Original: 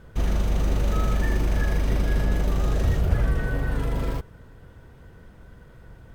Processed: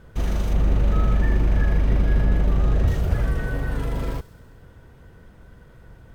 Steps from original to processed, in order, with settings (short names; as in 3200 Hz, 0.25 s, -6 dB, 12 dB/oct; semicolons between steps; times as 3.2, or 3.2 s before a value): 0.53–2.88 tone controls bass +4 dB, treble -11 dB; thin delay 65 ms, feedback 75%, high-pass 4900 Hz, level -13 dB